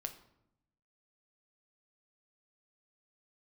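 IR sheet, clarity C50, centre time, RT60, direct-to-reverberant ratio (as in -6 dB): 12.5 dB, 10 ms, 0.80 s, 6.0 dB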